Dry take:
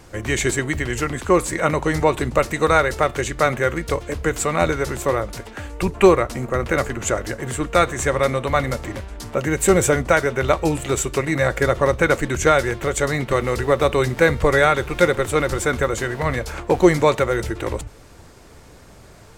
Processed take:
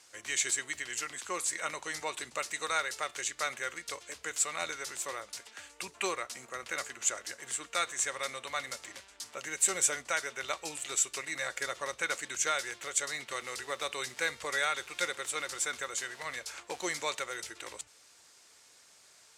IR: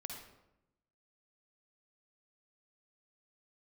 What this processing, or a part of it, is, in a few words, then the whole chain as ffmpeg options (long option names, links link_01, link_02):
piezo pickup straight into a mixer: -af "lowpass=7300,aderivative"